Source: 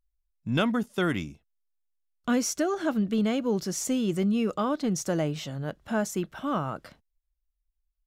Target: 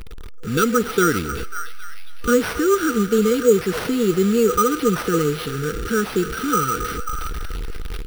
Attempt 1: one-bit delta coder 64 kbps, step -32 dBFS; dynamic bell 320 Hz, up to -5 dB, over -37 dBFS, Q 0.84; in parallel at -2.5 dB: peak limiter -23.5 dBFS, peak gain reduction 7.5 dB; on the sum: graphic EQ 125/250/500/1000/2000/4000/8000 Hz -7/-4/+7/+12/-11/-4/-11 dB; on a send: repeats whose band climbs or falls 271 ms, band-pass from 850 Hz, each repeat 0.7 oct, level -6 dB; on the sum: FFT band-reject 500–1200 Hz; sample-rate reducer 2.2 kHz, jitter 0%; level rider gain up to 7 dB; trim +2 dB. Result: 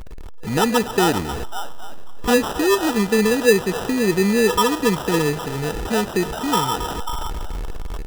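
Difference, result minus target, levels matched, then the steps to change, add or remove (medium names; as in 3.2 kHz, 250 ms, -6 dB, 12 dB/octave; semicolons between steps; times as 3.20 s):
sample-rate reducer: distortion +9 dB
change: sample-rate reducer 7.2 kHz, jitter 0%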